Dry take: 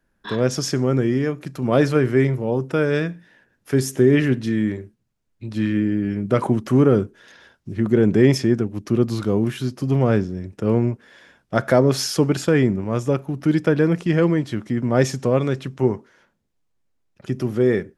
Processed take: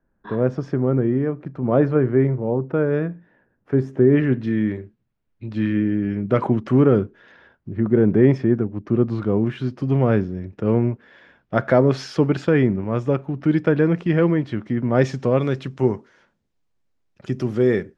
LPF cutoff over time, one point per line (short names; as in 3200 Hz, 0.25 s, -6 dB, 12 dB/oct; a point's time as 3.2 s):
3.93 s 1200 Hz
4.7 s 3000 Hz
6.98 s 3000 Hz
7.78 s 1600 Hz
8.9 s 1600 Hz
9.77 s 2900 Hz
14.86 s 2900 Hz
15.81 s 6600 Hz